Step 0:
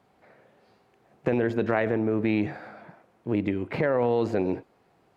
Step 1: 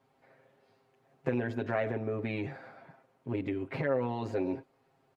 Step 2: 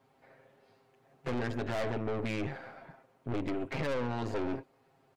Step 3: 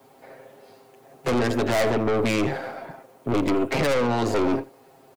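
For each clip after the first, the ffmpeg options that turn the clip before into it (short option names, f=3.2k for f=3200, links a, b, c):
-af "aecho=1:1:7.5:0.94,volume=-9dB"
-af "aeval=exprs='(tanh(70.8*val(0)+0.7)-tanh(0.7))/70.8':c=same,volume=6.5dB"
-filter_complex "[0:a]acrossover=split=240|920|1300[a][b][c][d];[b]aeval=exprs='0.0398*sin(PI/2*1.78*val(0)/0.0398)':c=same[e];[a][e][c][d]amix=inputs=4:normalize=0,crystalizer=i=3:c=0,aecho=1:1:83:0.1,volume=7.5dB"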